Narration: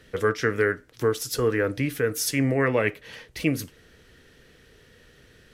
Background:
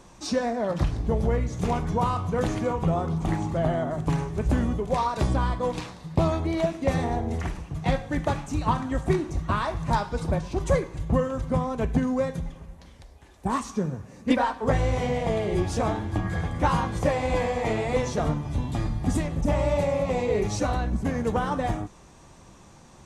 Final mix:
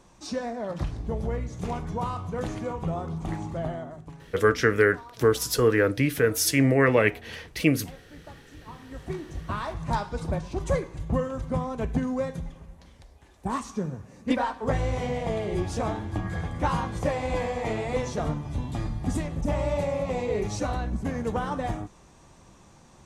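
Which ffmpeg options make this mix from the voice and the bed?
ffmpeg -i stem1.wav -i stem2.wav -filter_complex "[0:a]adelay=4200,volume=2.5dB[link_01];[1:a]volume=12dB,afade=type=out:start_time=3.58:duration=0.55:silence=0.177828,afade=type=in:start_time=8.71:duration=1.2:silence=0.133352[link_02];[link_01][link_02]amix=inputs=2:normalize=0" out.wav

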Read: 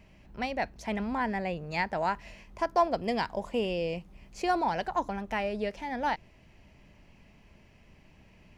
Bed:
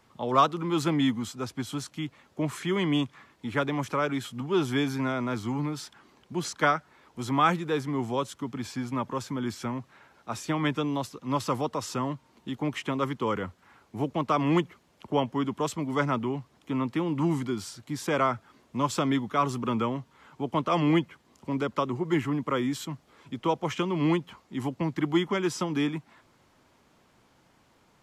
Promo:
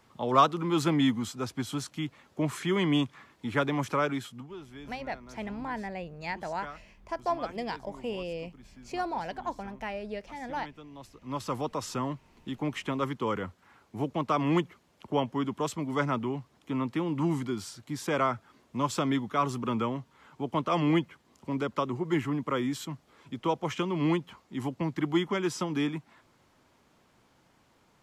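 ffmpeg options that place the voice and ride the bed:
ffmpeg -i stem1.wav -i stem2.wav -filter_complex "[0:a]adelay=4500,volume=-5dB[link_01];[1:a]volume=17.5dB,afade=type=out:start_time=4.01:duration=0.55:silence=0.105925,afade=type=in:start_time=10.93:duration=0.82:silence=0.133352[link_02];[link_01][link_02]amix=inputs=2:normalize=0" out.wav

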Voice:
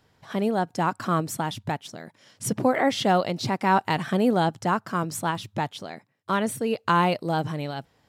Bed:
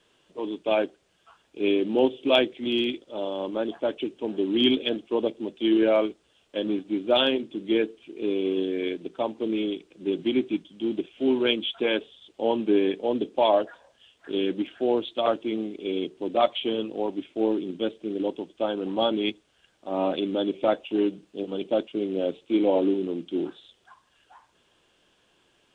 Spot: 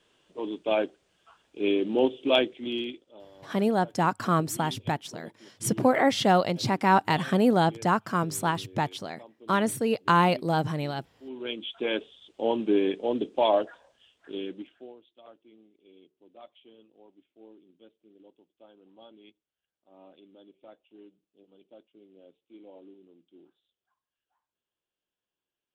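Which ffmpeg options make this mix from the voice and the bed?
ffmpeg -i stem1.wav -i stem2.wav -filter_complex "[0:a]adelay=3200,volume=0dB[link_01];[1:a]volume=18dB,afade=type=out:start_time=2.37:duration=0.89:silence=0.1,afade=type=in:start_time=11.25:duration=0.84:silence=0.1,afade=type=out:start_time=13.66:duration=1.29:silence=0.0501187[link_02];[link_01][link_02]amix=inputs=2:normalize=0" out.wav

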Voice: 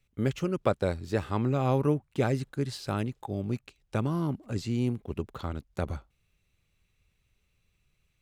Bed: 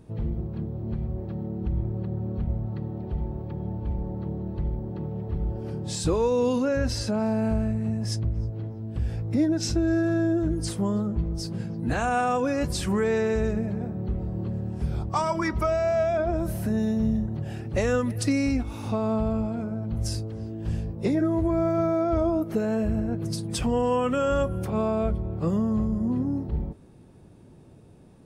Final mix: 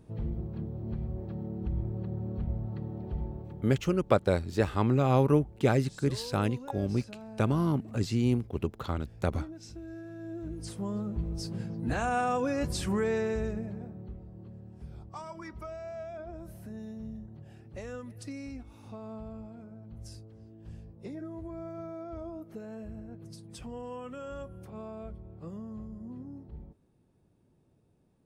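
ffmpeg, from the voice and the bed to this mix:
ffmpeg -i stem1.wav -i stem2.wav -filter_complex "[0:a]adelay=3450,volume=2dB[link_01];[1:a]volume=10.5dB,afade=type=out:start_time=3.22:duration=0.62:silence=0.177828,afade=type=in:start_time=10.17:duration=1.3:silence=0.16788,afade=type=out:start_time=13:duration=1.24:silence=0.237137[link_02];[link_01][link_02]amix=inputs=2:normalize=0" out.wav

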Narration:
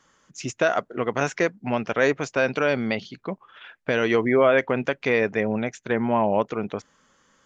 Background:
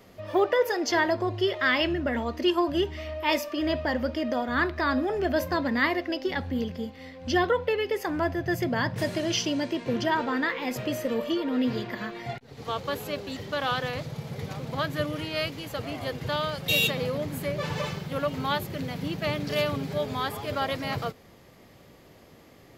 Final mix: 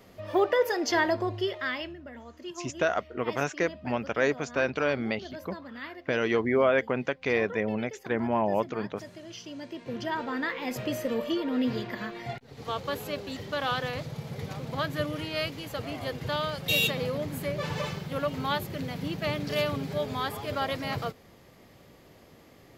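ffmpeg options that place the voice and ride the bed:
ffmpeg -i stem1.wav -i stem2.wav -filter_complex "[0:a]adelay=2200,volume=-5dB[link_01];[1:a]volume=14dB,afade=type=out:start_time=1.15:duration=0.81:silence=0.16788,afade=type=in:start_time=9.39:duration=1.46:silence=0.177828[link_02];[link_01][link_02]amix=inputs=2:normalize=0" out.wav

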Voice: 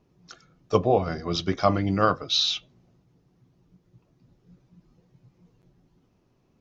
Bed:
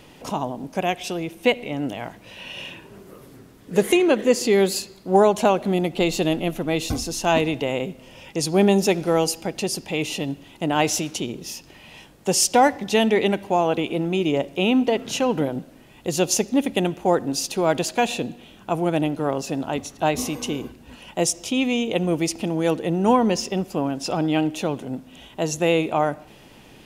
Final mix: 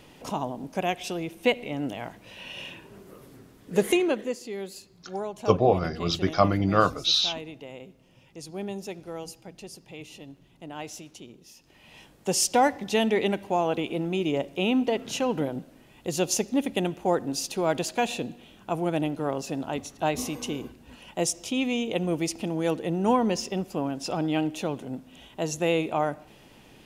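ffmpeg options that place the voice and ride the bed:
ffmpeg -i stem1.wav -i stem2.wav -filter_complex "[0:a]adelay=4750,volume=0.5dB[link_01];[1:a]volume=8.5dB,afade=type=out:start_time=3.9:duration=0.49:silence=0.211349,afade=type=in:start_time=11.55:duration=0.5:silence=0.237137[link_02];[link_01][link_02]amix=inputs=2:normalize=0" out.wav

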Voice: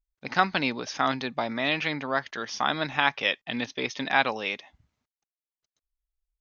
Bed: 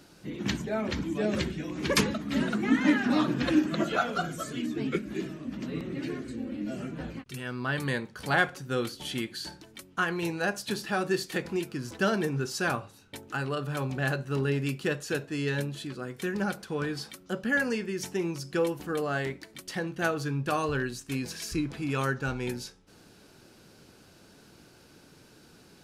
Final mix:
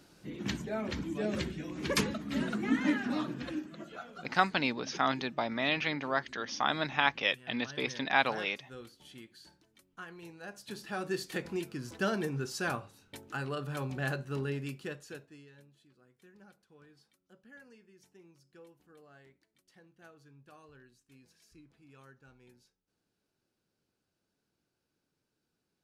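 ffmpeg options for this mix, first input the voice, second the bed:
ffmpeg -i stem1.wav -i stem2.wav -filter_complex "[0:a]adelay=4000,volume=-4dB[link_01];[1:a]volume=8dB,afade=type=out:start_time=2.77:duration=0.96:silence=0.223872,afade=type=in:start_time=10.42:duration=0.89:silence=0.223872,afade=type=out:start_time=14.17:duration=1.31:silence=0.0707946[link_02];[link_01][link_02]amix=inputs=2:normalize=0" out.wav

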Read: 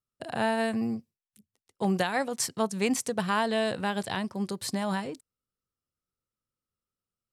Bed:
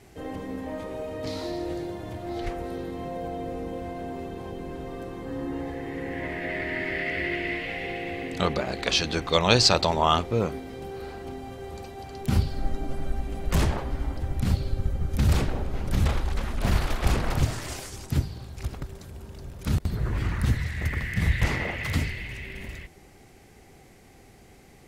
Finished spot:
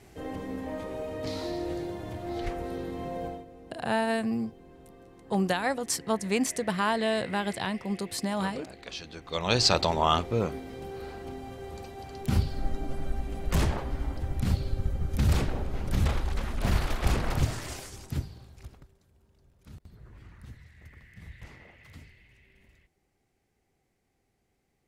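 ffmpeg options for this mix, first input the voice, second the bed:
ffmpeg -i stem1.wav -i stem2.wav -filter_complex "[0:a]adelay=3500,volume=0dB[link_01];[1:a]volume=12dB,afade=type=out:start_time=3.25:duration=0.2:silence=0.188365,afade=type=in:start_time=9.23:duration=0.5:silence=0.211349,afade=type=out:start_time=17.56:duration=1.38:silence=0.0944061[link_02];[link_01][link_02]amix=inputs=2:normalize=0" out.wav

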